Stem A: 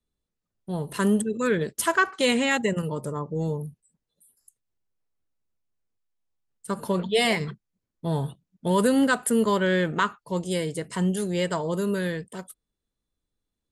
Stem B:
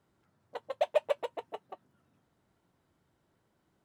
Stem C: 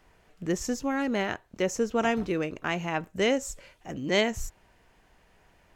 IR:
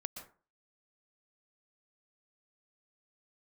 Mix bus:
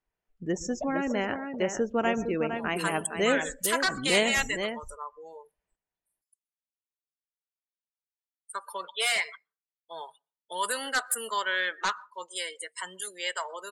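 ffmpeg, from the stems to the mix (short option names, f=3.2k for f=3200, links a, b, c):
-filter_complex "[0:a]highpass=1.2k,aeval=exprs='0.0841*(abs(mod(val(0)/0.0841+3,4)-2)-1)':c=same,adelay=1850,volume=0.5dB,asplit=2[a][b];[b]volume=-9dB[c];[1:a]volume=-7dB,asplit=2[d][e];[e]volume=-14.5dB[f];[2:a]volume=-3dB,asplit=4[g][h][i][j];[h]volume=-6.5dB[k];[i]volume=-4.5dB[l];[j]apad=whole_len=169651[m];[d][m]sidechaincompress=threshold=-32dB:ratio=8:attack=16:release=119[n];[3:a]atrim=start_sample=2205[o];[c][k]amix=inputs=2:normalize=0[p];[p][o]afir=irnorm=-1:irlink=0[q];[f][l]amix=inputs=2:normalize=0,aecho=0:1:459:1[r];[a][n][g][q][r]amix=inputs=5:normalize=0,afftdn=nr=26:nf=-39,lowshelf=f=130:g=-5.5"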